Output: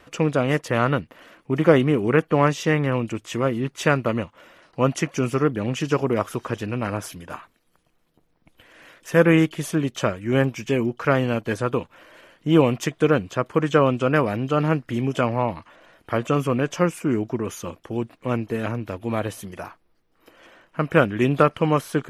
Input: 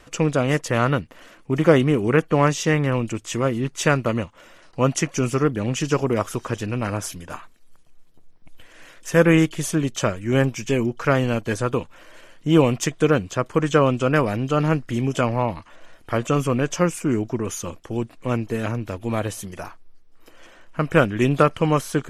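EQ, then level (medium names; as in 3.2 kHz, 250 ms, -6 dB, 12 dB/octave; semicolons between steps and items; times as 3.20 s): high-pass 100 Hz 6 dB/octave; peaking EQ 7.2 kHz -8 dB 1.2 oct; 0.0 dB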